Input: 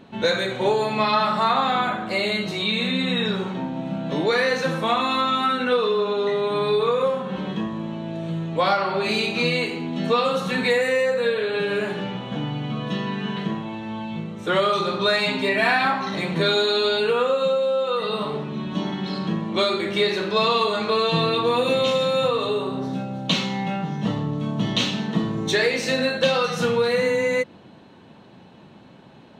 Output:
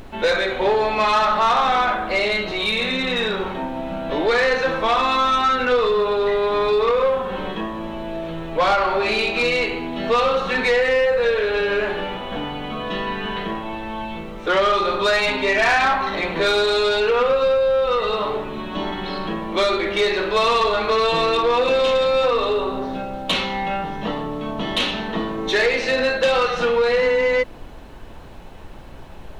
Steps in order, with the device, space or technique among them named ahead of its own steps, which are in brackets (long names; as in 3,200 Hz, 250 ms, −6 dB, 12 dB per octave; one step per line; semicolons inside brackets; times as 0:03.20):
aircraft cabin announcement (band-pass filter 370–3,300 Hz; soft clipping −18.5 dBFS, distortion −15 dB; brown noise bed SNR 17 dB)
level +6.5 dB